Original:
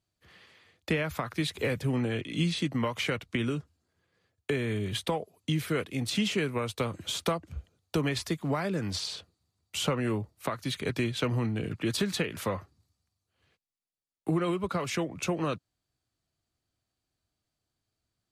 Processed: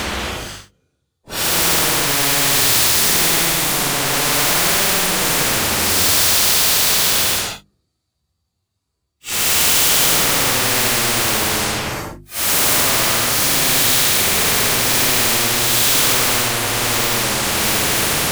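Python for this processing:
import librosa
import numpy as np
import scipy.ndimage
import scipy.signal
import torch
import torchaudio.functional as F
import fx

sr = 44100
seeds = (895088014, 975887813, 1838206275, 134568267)

p1 = fx.frame_reverse(x, sr, frame_ms=85.0)
p2 = fx.leveller(p1, sr, passes=5)
p3 = fx.level_steps(p2, sr, step_db=12)
p4 = p2 + (p3 * librosa.db_to_amplitude(-0.5))
p5 = fx.leveller(p4, sr, passes=3)
p6 = fx.paulstretch(p5, sr, seeds[0], factor=4.4, window_s=0.1, from_s=7.56)
p7 = fx.hum_notches(p6, sr, base_hz=50, count=7)
y = fx.spectral_comp(p7, sr, ratio=4.0)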